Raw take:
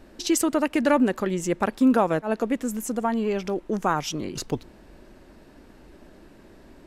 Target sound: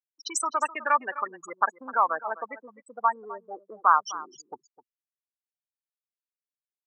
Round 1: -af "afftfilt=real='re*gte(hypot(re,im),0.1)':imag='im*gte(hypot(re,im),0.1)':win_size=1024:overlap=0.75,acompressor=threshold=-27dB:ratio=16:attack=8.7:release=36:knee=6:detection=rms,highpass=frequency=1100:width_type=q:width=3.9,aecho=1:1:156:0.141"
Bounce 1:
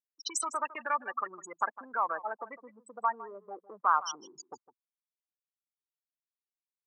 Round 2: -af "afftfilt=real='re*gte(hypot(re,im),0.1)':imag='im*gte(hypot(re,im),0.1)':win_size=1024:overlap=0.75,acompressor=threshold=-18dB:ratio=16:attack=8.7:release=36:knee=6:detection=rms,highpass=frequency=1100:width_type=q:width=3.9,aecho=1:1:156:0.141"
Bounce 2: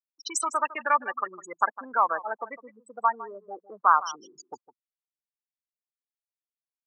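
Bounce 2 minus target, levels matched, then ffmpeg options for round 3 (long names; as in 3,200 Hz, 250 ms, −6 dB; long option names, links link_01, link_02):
echo 100 ms early
-af "afftfilt=real='re*gte(hypot(re,im),0.1)':imag='im*gte(hypot(re,im),0.1)':win_size=1024:overlap=0.75,acompressor=threshold=-18dB:ratio=16:attack=8.7:release=36:knee=6:detection=rms,highpass=frequency=1100:width_type=q:width=3.9,aecho=1:1:256:0.141"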